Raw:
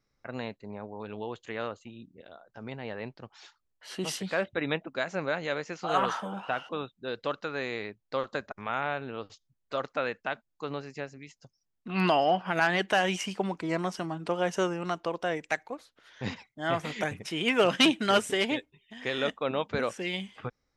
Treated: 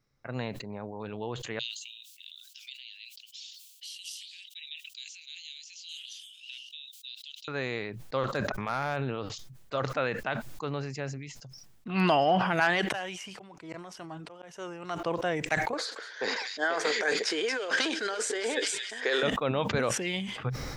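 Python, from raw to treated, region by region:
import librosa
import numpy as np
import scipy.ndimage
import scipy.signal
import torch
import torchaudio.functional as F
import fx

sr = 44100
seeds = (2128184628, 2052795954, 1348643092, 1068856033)

y = fx.chain(x, sr, fx.steep_highpass(hz=2900.0, slope=48),
    fx.band_squash(depth_pct=100), at=(1.59, 7.48))
y = fx.chain(y, sr, fx.clip_hard(threshold_db=-21.0),
    fx.notch(hz=1500.0, q=27.0),
    fx.sustainer(db_per_s=26.0), at=(8.31, 9.2))
y = fx.chain(y, sr, fx.peak_eq(hz=180.0, db=-7.0, octaves=1.6),
    fx.auto_swell(attack_ms=750.0), at=(12.6, 15.05))
y = fx.chain(y, sr, fx.over_compress(threshold_db=-33.0, ratio=-1.0),
    fx.cabinet(low_hz=340.0, low_slope=24, high_hz=9000.0, hz=(450.0, 1600.0, 2800.0, 4600.0, 6900.0), db=(9, 9, -6, 10, 4)),
    fx.echo_wet_highpass(ms=230, feedback_pct=57, hz=3200.0, wet_db=-10.5), at=(15.73, 19.23))
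y = fx.peak_eq(y, sr, hz=130.0, db=8.0, octaves=0.43)
y = fx.sustainer(y, sr, db_per_s=40.0)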